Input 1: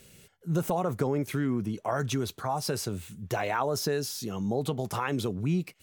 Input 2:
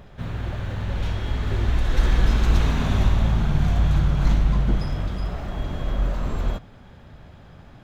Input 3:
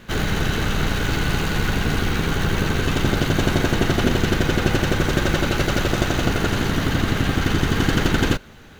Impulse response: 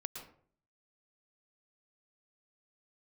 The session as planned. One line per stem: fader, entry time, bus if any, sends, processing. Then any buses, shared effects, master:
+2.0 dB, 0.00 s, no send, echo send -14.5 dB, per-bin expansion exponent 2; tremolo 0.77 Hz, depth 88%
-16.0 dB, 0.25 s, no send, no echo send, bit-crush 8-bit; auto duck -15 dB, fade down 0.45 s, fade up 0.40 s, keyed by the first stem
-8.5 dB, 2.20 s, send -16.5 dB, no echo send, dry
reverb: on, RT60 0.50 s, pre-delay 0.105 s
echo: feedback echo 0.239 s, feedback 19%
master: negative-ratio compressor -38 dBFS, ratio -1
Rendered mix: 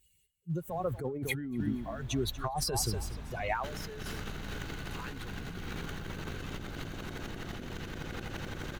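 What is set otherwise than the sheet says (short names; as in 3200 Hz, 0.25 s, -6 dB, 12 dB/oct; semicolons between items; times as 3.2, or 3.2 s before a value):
stem 2: entry 0.25 s -> 0.50 s; stem 3: entry 2.20 s -> 3.55 s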